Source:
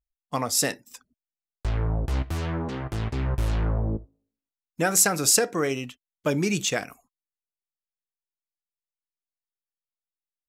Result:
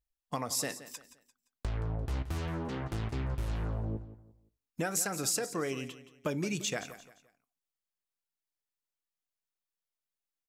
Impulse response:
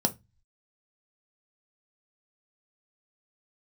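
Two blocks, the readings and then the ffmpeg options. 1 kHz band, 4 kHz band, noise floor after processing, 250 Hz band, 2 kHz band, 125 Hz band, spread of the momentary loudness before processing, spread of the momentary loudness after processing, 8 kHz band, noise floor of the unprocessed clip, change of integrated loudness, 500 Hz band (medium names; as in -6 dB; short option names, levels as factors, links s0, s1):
-9.0 dB, -9.5 dB, under -85 dBFS, -8.0 dB, -10.0 dB, -8.0 dB, 14 LU, 14 LU, -11.0 dB, under -85 dBFS, -10.0 dB, -9.0 dB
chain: -af "acompressor=threshold=0.0178:ratio=2.5,aecho=1:1:173|346|519:0.188|0.064|0.0218"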